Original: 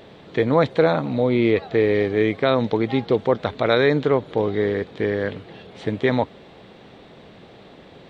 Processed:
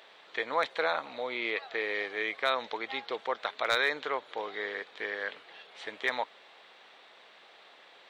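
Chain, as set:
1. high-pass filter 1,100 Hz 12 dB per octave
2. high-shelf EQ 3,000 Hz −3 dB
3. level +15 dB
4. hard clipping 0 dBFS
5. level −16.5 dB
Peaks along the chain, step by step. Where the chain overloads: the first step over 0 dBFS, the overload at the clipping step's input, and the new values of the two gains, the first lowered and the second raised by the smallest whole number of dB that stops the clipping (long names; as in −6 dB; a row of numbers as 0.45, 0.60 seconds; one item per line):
−8.5, −9.5, +5.5, 0.0, −16.5 dBFS
step 3, 5.5 dB
step 3 +9 dB, step 5 −10.5 dB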